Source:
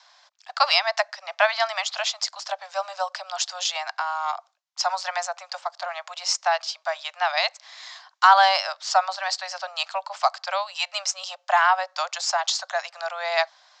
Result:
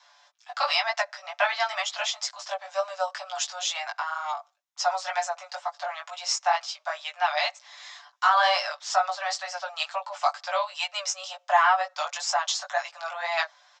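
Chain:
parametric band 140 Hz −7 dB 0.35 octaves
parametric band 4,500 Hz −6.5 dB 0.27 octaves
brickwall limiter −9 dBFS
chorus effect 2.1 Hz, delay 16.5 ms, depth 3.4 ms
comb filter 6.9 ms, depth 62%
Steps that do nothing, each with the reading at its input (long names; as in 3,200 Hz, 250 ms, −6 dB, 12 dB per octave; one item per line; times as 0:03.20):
parametric band 140 Hz: nothing at its input below 510 Hz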